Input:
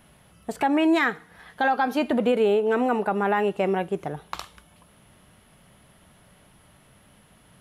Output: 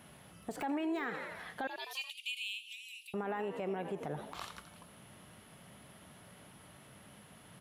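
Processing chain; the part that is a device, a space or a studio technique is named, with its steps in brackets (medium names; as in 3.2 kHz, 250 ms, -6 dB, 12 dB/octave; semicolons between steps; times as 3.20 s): 1.67–3.14 s: steep high-pass 2.4 kHz 96 dB/octave; frequency-shifting echo 86 ms, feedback 53%, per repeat +64 Hz, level -16 dB; podcast mastering chain (high-pass 89 Hz; de-esser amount 95%; compression 4:1, threshold -30 dBFS, peak gain reduction 11.5 dB; peak limiter -28.5 dBFS, peak gain reduction 11.5 dB; MP3 128 kbps 48 kHz)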